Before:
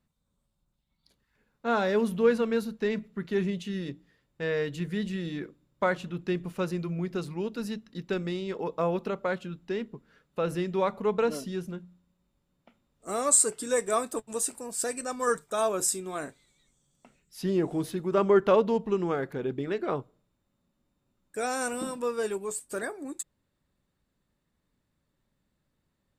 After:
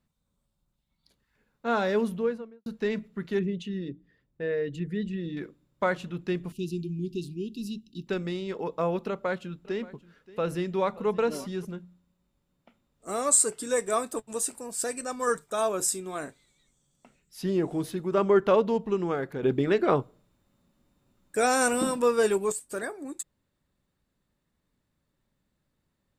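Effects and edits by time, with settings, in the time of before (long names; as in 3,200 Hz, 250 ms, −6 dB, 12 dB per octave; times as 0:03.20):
0:01.92–0:02.66: fade out and dull
0:03.39–0:05.37: spectral envelope exaggerated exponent 1.5
0:06.52–0:08.07: Chebyshev band-stop filter 390–2,700 Hz, order 5
0:09.07–0:11.65: single-tap delay 578 ms −19.5 dB
0:19.43–0:22.52: clip gain +7 dB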